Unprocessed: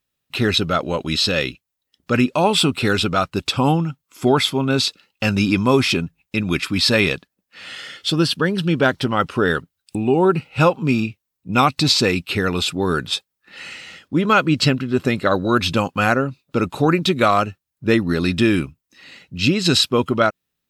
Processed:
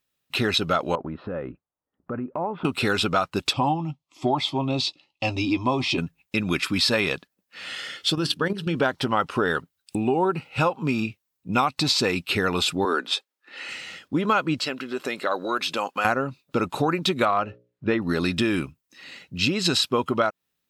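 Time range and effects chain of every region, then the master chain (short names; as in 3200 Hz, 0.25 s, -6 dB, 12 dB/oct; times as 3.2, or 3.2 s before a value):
0.95–2.65 LPF 1300 Hz 24 dB/oct + compressor 5:1, threshold -26 dBFS
3.53–5.98 LPF 4200 Hz + fixed phaser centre 300 Hz, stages 8 + doubler 13 ms -12 dB
8.15–8.76 low shelf 180 Hz +2.5 dB + notches 60/120/180/240/300/360/420 Hz + level quantiser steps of 10 dB
12.85–13.69 steep high-pass 240 Hz + high shelf 7200 Hz -10.5 dB
14.59–16.05 HPF 380 Hz + compressor 2:1, threshold -26 dBFS
17.25–18.02 LPF 3100 Hz + notches 60/120/180/240/300/360/420/480/540/600 Hz
whole clip: dynamic EQ 900 Hz, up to +6 dB, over -31 dBFS, Q 1.3; compressor, threshold -18 dBFS; low shelf 140 Hz -7 dB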